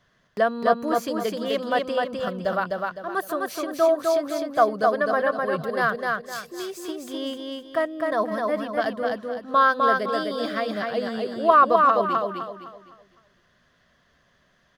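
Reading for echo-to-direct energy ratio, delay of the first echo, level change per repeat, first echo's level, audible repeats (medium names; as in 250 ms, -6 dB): -2.5 dB, 255 ms, -9.0 dB, -3.0 dB, 4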